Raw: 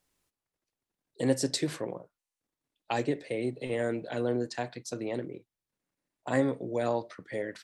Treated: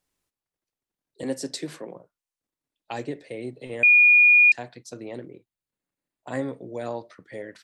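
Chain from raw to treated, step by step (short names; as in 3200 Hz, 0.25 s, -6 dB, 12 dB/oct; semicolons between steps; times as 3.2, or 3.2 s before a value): 1.23–1.96 steep high-pass 150 Hz; 3.83–4.52 bleep 2440 Hz -9 dBFS; 5.3–6.51 notch 5600 Hz, Q 7.2; gain -2.5 dB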